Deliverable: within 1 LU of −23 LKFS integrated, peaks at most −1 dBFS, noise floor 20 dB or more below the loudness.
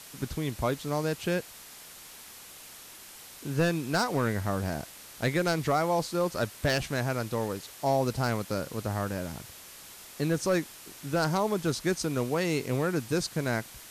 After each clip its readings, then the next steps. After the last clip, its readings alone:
share of clipped samples 0.4%; peaks flattened at −18.0 dBFS; background noise floor −48 dBFS; target noise floor −50 dBFS; integrated loudness −30.0 LKFS; sample peak −18.0 dBFS; target loudness −23.0 LKFS
→ clipped peaks rebuilt −18 dBFS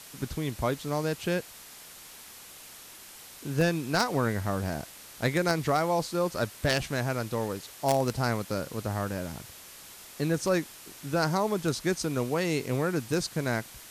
share of clipped samples 0.0%; background noise floor −48 dBFS; target noise floor −50 dBFS
→ noise reduction from a noise print 6 dB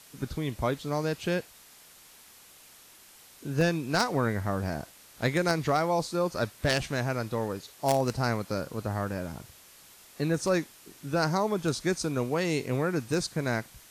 background noise floor −54 dBFS; integrated loudness −29.5 LKFS; sample peak −9.0 dBFS; target loudness −23.0 LKFS
→ level +6.5 dB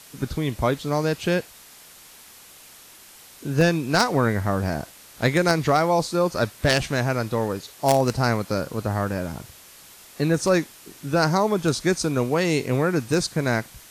integrated loudness −23.0 LKFS; sample peak −2.5 dBFS; background noise floor −48 dBFS

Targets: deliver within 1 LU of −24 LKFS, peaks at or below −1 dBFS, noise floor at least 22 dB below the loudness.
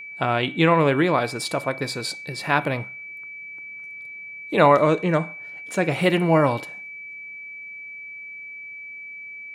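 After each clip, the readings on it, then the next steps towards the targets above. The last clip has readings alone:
interfering tone 2,300 Hz; level of the tone −35 dBFS; integrated loudness −21.5 LKFS; sample peak −4.0 dBFS; target loudness −24.0 LKFS
→ notch filter 2,300 Hz, Q 30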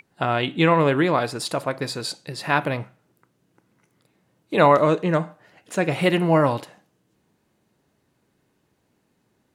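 interfering tone none found; integrated loudness −21.5 LKFS; sample peak −3.5 dBFS; target loudness −24.0 LKFS
→ level −2.5 dB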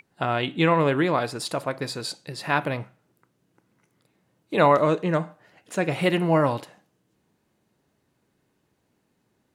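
integrated loudness −24.0 LKFS; sample peak −6.0 dBFS; background noise floor −72 dBFS

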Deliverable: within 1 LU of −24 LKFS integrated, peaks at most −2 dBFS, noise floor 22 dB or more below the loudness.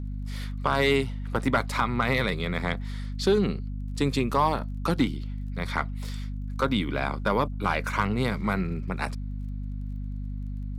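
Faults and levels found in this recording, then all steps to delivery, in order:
crackle rate 25 per second; mains hum 50 Hz; hum harmonics up to 250 Hz; level of the hum −30 dBFS; integrated loudness −28.0 LKFS; sample peak −11.5 dBFS; target loudness −24.0 LKFS
→ click removal
hum removal 50 Hz, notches 5
level +4 dB

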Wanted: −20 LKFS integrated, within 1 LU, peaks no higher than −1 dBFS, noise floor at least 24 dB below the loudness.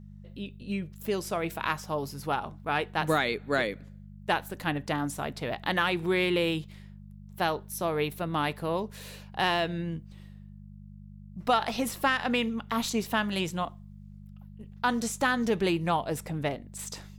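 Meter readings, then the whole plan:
mains hum 50 Hz; hum harmonics up to 200 Hz; level of the hum −44 dBFS; integrated loudness −30.0 LKFS; sample peak −12.5 dBFS; target loudness −20.0 LKFS
→ hum removal 50 Hz, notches 4
level +10 dB

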